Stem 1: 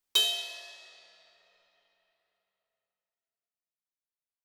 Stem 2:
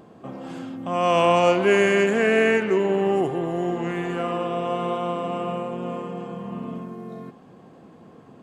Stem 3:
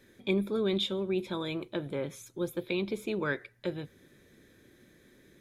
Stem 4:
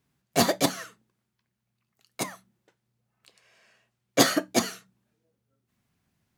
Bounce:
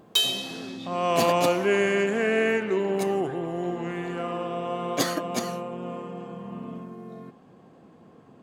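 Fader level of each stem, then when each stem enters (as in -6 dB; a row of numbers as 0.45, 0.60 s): +2.5, -4.5, -15.5, -6.0 dB; 0.00, 0.00, 0.00, 0.80 s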